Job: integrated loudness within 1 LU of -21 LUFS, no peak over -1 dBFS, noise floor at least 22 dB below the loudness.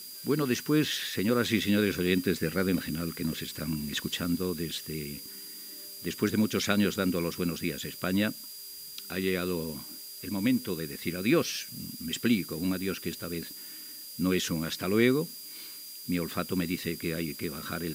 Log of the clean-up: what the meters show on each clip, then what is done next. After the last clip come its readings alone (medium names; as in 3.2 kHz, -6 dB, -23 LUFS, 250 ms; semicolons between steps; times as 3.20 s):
steady tone 4.8 kHz; tone level -46 dBFS; noise floor -44 dBFS; noise floor target -53 dBFS; loudness -30.5 LUFS; peak level -9.5 dBFS; loudness target -21.0 LUFS
-> band-stop 4.8 kHz, Q 30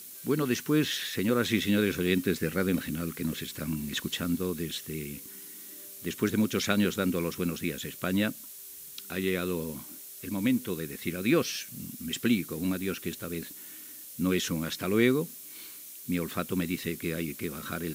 steady tone not found; noise floor -46 dBFS; noise floor target -52 dBFS
-> noise reduction 6 dB, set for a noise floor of -46 dBFS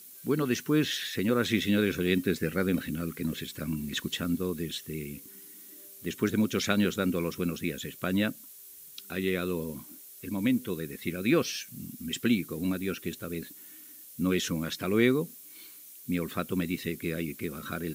noise floor -49 dBFS; noise floor target -53 dBFS
-> noise reduction 6 dB, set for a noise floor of -49 dBFS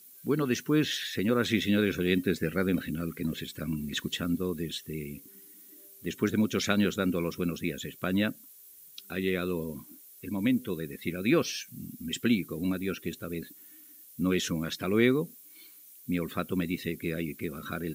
noise floor -53 dBFS; loudness -30.5 LUFS; peak level -9.5 dBFS; loudness target -21.0 LUFS
-> trim +9.5 dB; peak limiter -1 dBFS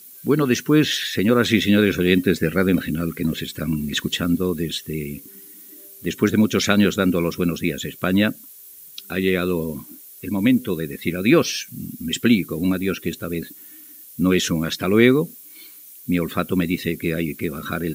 loudness -21.0 LUFS; peak level -1.0 dBFS; noise floor -43 dBFS